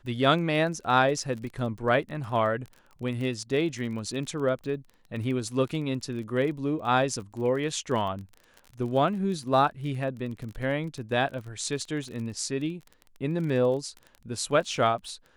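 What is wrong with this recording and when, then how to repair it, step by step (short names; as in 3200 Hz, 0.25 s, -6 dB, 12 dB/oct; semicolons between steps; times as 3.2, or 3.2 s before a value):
crackle 27/s -35 dBFS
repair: de-click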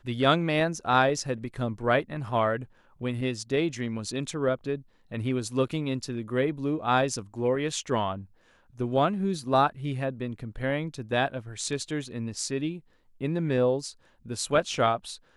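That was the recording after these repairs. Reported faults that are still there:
none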